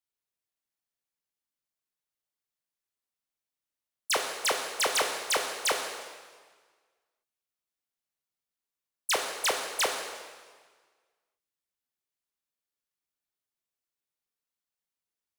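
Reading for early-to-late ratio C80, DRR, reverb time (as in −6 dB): 6.5 dB, 2.5 dB, 1.6 s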